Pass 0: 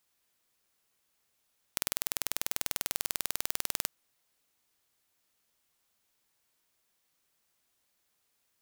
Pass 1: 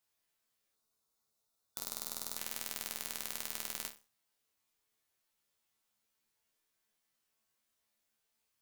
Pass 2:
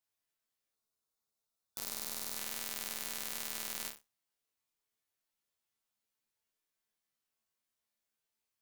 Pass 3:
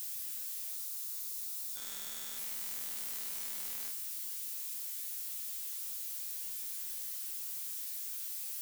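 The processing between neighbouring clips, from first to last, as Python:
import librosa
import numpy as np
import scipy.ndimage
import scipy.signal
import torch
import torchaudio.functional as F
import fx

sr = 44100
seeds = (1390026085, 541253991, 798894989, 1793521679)

y1 = fx.resonator_bank(x, sr, root=38, chord='fifth', decay_s=0.31)
y1 = fx.spec_box(y1, sr, start_s=0.75, length_s=1.62, low_hz=1500.0, high_hz=3500.0, gain_db=-9)
y1 = y1 * 10.0 ** (4.5 / 20.0)
y2 = fx.leveller(y1, sr, passes=2)
y2 = y2 * 10.0 ** (-2.5 / 20.0)
y3 = y2 + 0.5 * 10.0 ** (-28.5 / 20.0) * np.diff(np.sign(y2), prepend=np.sign(y2[:1]))
y3 = y3 * 10.0 ** (-7.5 / 20.0)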